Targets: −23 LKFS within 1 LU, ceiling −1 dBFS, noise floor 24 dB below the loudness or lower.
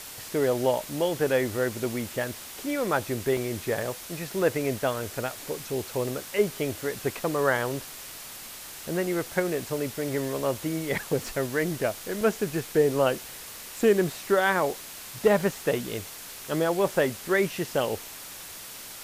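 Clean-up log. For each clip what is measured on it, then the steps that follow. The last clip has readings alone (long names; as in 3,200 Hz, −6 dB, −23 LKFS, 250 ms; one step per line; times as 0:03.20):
number of dropouts 4; longest dropout 1.4 ms; background noise floor −42 dBFS; target noise floor −52 dBFS; integrated loudness −27.5 LKFS; sample peak −10.5 dBFS; target loudness −23.0 LKFS
→ repair the gap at 0:03.37/0:05.82/0:12.21/0:14.74, 1.4 ms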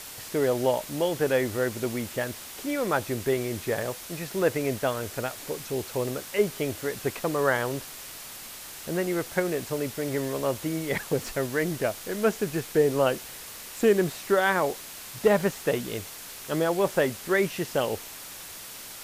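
number of dropouts 0; background noise floor −42 dBFS; target noise floor −52 dBFS
→ broadband denoise 10 dB, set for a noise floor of −42 dBFS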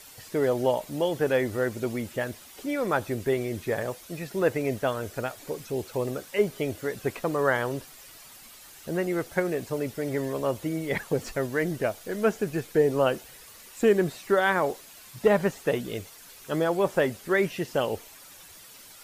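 background noise floor −49 dBFS; target noise floor −52 dBFS
→ broadband denoise 6 dB, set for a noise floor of −49 dBFS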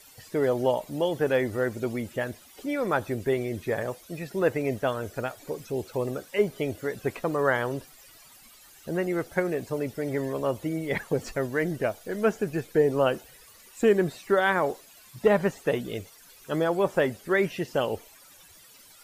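background noise floor −53 dBFS; integrated loudness −28.0 LKFS; sample peak −11.0 dBFS; target loudness −23.0 LKFS
→ level +5 dB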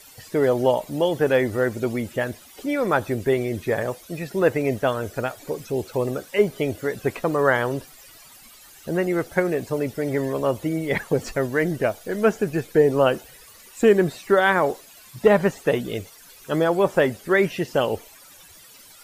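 integrated loudness −23.0 LKFS; sample peak −6.0 dBFS; background noise floor −48 dBFS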